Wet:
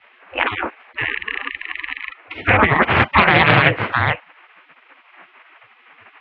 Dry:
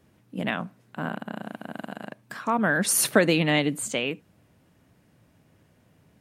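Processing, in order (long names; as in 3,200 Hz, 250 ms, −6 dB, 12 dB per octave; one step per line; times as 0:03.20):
gate on every frequency bin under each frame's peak −25 dB weak
parametric band 170 Hz +14 dB 0.54 octaves
single-sideband voice off tune −71 Hz 160–2,600 Hz
boost into a limiter +32.5 dB
highs frequency-modulated by the lows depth 0.31 ms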